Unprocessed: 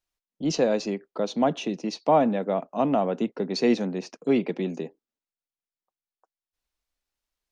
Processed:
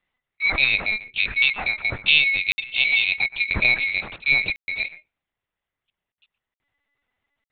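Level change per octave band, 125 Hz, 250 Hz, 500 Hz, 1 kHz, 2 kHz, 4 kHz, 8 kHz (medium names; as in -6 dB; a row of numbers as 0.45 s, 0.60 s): -3.5 dB, -17.5 dB, -17.5 dB, -10.0 dB, +23.0 dB, +14.5 dB, no reading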